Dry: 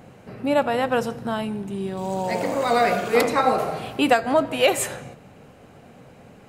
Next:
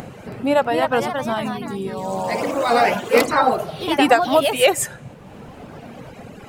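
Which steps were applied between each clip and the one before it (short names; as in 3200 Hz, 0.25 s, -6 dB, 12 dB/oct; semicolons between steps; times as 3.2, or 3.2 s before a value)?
reverb removal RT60 1.6 s; upward compressor, threshold -31 dBFS; echoes that change speed 0.323 s, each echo +2 st, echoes 3, each echo -6 dB; gain +3.5 dB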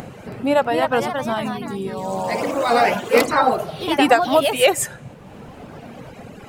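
nothing audible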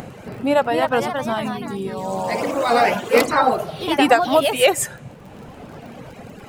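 crackle 27/s -35 dBFS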